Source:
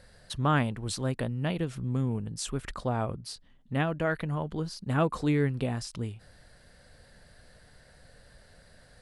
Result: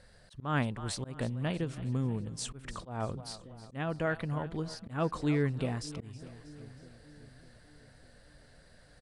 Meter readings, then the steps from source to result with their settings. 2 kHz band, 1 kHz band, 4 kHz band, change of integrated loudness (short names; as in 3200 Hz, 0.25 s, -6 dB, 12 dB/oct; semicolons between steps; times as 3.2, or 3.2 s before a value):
-4.0 dB, -5.5 dB, -4.0 dB, -4.0 dB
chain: split-band echo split 470 Hz, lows 0.602 s, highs 0.319 s, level -16 dB; downsampling 22050 Hz; auto swell 0.186 s; gain -3 dB